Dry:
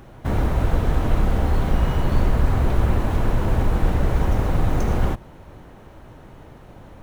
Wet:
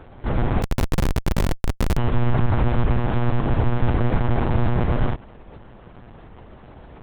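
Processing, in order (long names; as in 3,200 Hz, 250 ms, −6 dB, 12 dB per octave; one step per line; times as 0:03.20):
one-pitch LPC vocoder at 8 kHz 120 Hz
0:00.62–0:01.97: comparator with hysteresis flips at −22 dBFS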